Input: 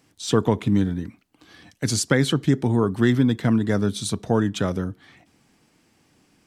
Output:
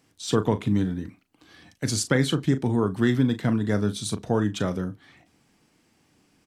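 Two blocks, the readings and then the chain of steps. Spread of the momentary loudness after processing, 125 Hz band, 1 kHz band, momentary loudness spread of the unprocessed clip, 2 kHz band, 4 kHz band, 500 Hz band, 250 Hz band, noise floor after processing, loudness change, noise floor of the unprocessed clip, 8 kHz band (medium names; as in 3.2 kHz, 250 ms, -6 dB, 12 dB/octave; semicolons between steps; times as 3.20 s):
9 LU, -2.5 dB, -2.5 dB, 9 LU, -2.5 dB, -2.5 dB, -3.0 dB, -3.0 dB, -66 dBFS, -3.0 dB, -63 dBFS, -2.5 dB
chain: doubling 38 ms -11.5 dB; trim -3 dB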